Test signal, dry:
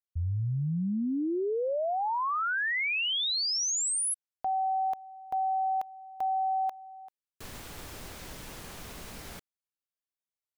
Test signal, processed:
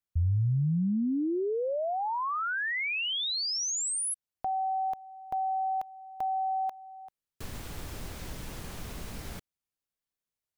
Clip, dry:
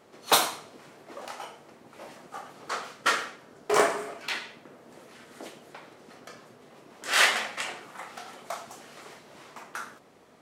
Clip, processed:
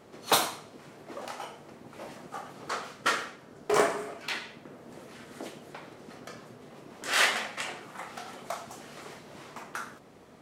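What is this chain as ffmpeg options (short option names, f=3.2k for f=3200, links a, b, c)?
-filter_complex "[0:a]lowshelf=f=250:g=8,asplit=2[a][b];[b]acompressor=threshold=-38dB:ratio=6:attack=26:release=913:knee=6:detection=peak,volume=-2dB[c];[a][c]amix=inputs=2:normalize=0,volume=-4dB"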